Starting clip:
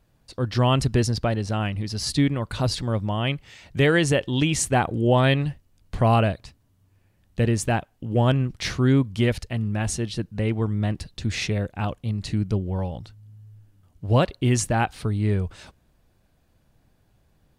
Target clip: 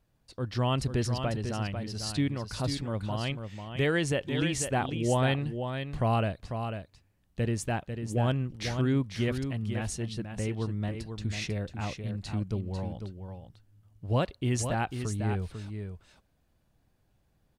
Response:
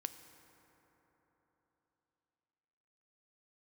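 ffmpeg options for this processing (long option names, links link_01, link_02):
-af "aecho=1:1:496:0.422,volume=-8dB"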